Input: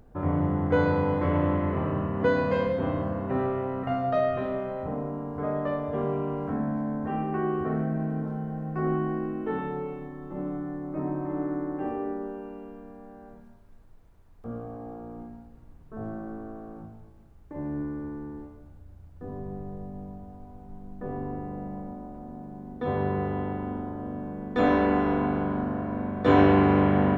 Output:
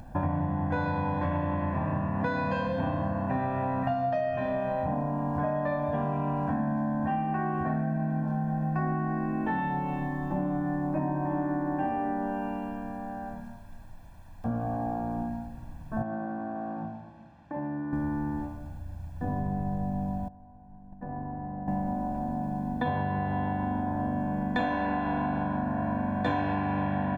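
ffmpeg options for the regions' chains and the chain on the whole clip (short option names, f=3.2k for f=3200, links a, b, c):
-filter_complex "[0:a]asettb=1/sr,asplit=3[a][b][c];[a]atrim=end=16.024[d];[b]atrim=start=16.02:end=17.93,asetpts=PTS-STARTPTS,afade=t=in:d=0.004:c=qsin,afade=t=out:st=1.906:d=0.004:c=qsin,highpass=180,lowpass=3.5k,acompressor=threshold=-39dB:ratio=5:attack=3.2:release=140:knee=1:detection=peak[e];[c]atrim=start=17.926[f];[d][e]acrossfade=d=0.004:c1=hsin:c2=qsin[g];[g][f]acrossfade=d=0.004:c1=qsin:c2=hsin,asettb=1/sr,asplit=3[h][i][j];[h]atrim=end=20.284[k];[i]atrim=start=20.28:end=21.68,asetpts=PTS-STARTPTS,afade=t=in:d=0.004:c=qsin,afade=t=out:st=1.396:d=0.004:c=qsin,agate=range=-16dB:threshold=-37dB:ratio=16:release=100:detection=peak,lowpass=1.6k,acompressor=threshold=-44dB:ratio=4:attack=3.2:release=140:knee=1:detection=peak[l];[j]atrim=start=21.676[m];[k][l]acrossfade=d=0.004:c1=hsin:c2=qsin[n];[n][m]acrossfade=d=0.004:c1=qsin:c2=hsin,lowshelf=f=86:g=-8,aecho=1:1:1.2:0.93,acompressor=threshold=-34dB:ratio=12,volume=8.5dB"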